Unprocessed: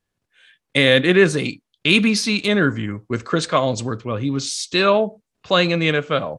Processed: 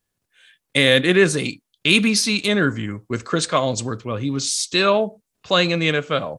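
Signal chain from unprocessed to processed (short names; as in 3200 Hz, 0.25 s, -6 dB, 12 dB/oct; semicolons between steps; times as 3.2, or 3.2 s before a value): high shelf 6900 Hz +12 dB; gain -1.5 dB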